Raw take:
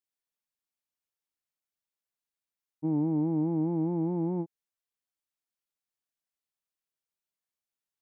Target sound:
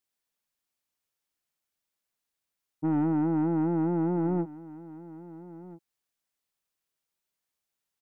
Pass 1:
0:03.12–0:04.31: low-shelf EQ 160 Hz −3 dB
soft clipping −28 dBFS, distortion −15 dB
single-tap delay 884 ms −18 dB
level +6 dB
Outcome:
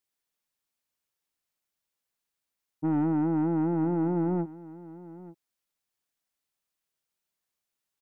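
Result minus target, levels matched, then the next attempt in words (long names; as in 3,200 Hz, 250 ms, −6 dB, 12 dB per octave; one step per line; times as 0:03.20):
echo 445 ms early
0:03.12–0:04.31: low-shelf EQ 160 Hz −3 dB
soft clipping −28 dBFS, distortion −15 dB
single-tap delay 1,329 ms −18 dB
level +6 dB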